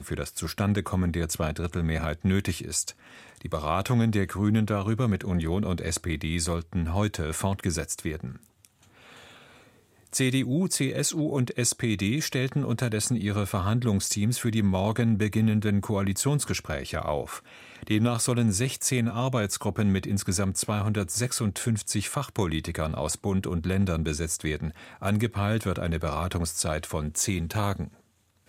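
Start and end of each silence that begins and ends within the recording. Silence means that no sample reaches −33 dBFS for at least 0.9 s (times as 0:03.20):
0:08.65–0:10.13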